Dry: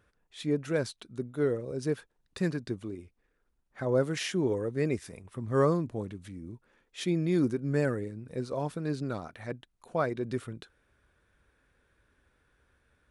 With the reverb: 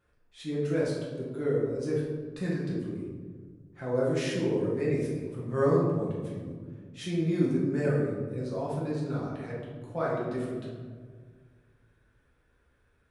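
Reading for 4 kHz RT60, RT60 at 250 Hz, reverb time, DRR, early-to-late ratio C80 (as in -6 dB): 0.75 s, 2.2 s, 1.7 s, -6.5 dB, 3.5 dB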